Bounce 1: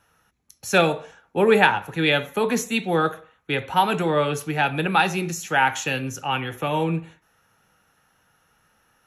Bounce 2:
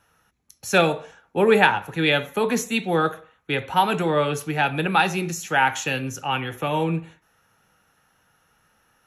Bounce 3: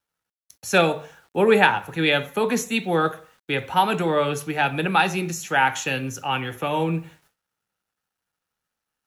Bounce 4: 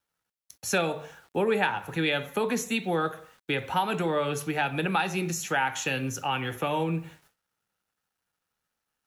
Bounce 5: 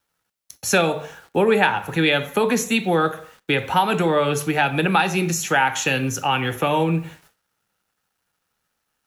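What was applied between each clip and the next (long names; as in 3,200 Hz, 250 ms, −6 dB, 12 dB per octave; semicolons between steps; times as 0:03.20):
no processing that can be heard
mains-hum notches 50/100/150 Hz; bit-depth reduction 10 bits, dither none; noise gate with hold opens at −52 dBFS
downward compressor 2.5 to 1, threshold −26 dBFS, peak gain reduction 10 dB
four-comb reverb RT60 0.33 s, combs from 28 ms, DRR 19.5 dB; level +8 dB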